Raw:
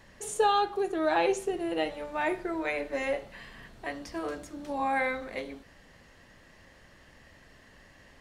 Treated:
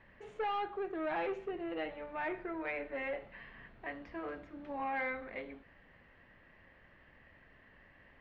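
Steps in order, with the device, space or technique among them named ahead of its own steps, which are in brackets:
overdriven synthesiser ladder filter (soft clipping −25 dBFS, distortion −12 dB; transistor ladder low-pass 2,900 Hz, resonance 30%)

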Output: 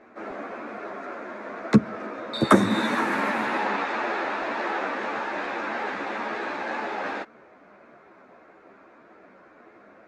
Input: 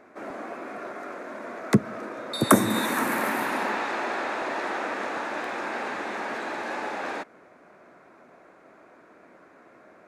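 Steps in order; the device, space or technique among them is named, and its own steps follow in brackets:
string-machine ensemble chorus (string-ensemble chorus; low-pass filter 4,800 Hz 12 dB per octave)
level +4.5 dB

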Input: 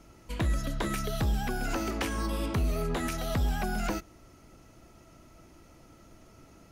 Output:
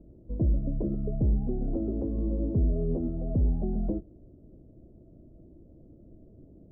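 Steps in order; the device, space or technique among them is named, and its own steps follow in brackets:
under water (low-pass filter 410 Hz 24 dB per octave; parametric band 610 Hz +8.5 dB 0.53 octaves)
level +3.5 dB

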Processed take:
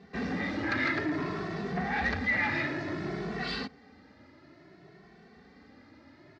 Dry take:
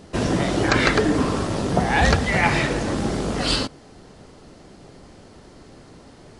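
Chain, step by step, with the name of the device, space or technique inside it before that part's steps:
barber-pole flanger into a guitar amplifier (barber-pole flanger 2.2 ms +0.57 Hz; soft clipping −20.5 dBFS, distortion −11 dB; loudspeaker in its box 100–4,400 Hz, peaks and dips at 120 Hz −7 dB, 520 Hz −8 dB, 950 Hz −4 dB, 1,900 Hz +8 dB, 3,100 Hz −8 dB)
level −4.5 dB

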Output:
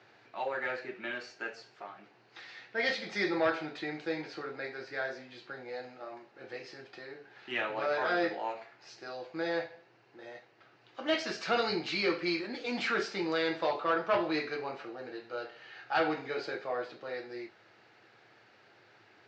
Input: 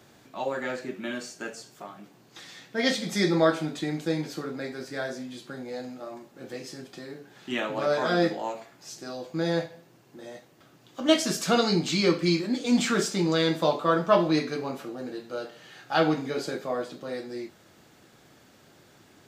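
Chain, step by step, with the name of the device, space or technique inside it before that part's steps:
overdrive pedal into a guitar cabinet (mid-hump overdrive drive 16 dB, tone 6,600 Hz, clips at −6 dBFS; loudspeaker in its box 110–4,200 Hz, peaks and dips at 110 Hz +9 dB, 170 Hz −9 dB, 260 Hz −9 dB, 590 Hz −4 dB, 1,100 Hz −5 dB, 3,400 Hz −9 dB)
level −9 dB

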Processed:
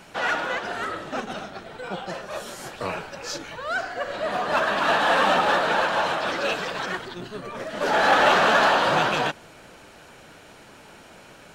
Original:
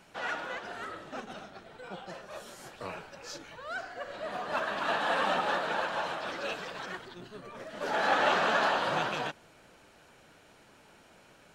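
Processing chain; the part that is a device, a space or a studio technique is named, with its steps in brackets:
parallel distortion (in parallel at −4 dB: hard clipping −31 dBFS, distortion −7 dB)
on the sum: level +6.5 dB

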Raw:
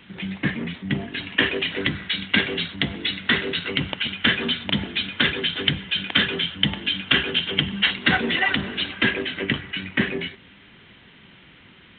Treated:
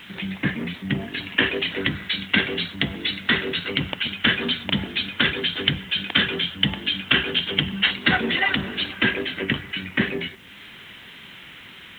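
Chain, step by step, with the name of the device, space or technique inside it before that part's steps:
noise-reduction cassette on a plain deck (one half of a high-frequency compander encoder only; tape wow and flutter 27 cents; white noise bed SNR 37 dB)

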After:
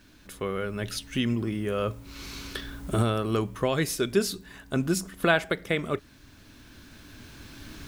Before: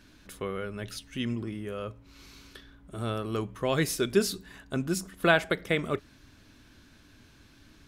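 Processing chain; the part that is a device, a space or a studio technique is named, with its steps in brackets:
cheap recorder with automatic gain (white noise bed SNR 39 dB; camcorder AGC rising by 6.6 dB per second)

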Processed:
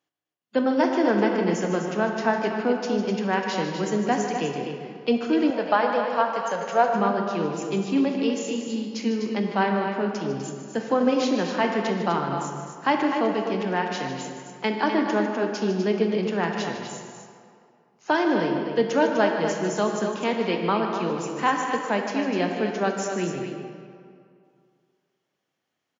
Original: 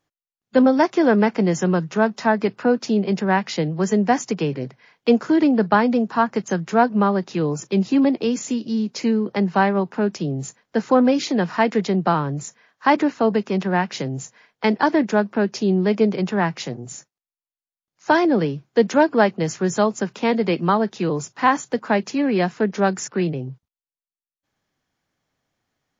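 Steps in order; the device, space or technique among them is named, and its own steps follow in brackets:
stadium PA (high-pass filter 180 Hz 12 dB per octave; parametric band 2,900 Hz +6 dB 0.33 octaves; loudspeakers that aren't time-aligned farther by 52 metres −11 dB, 86 metres −8 dB; convolution reverb RT60 2.3 s, pre-delay 21 ms, DRR 4 dB)
0:05.50–0:06.94: low shelf with overshoot 430 Hz −7 dB, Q 3
level −6 dB

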